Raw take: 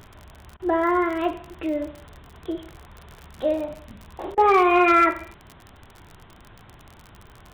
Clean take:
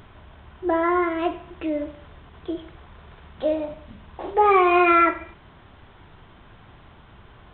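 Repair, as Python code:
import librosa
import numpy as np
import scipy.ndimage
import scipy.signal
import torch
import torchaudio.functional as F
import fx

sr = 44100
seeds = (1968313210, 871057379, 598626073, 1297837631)

y = fx.fix_declip(x, sr, threshold_db=-9.5)
y = fx.fix_declick_ar(y, sr, threshold=6.5)
y = fx.fix_interpolate(y, sr, at_s=(0.57, 4.35), length_ms=25.0)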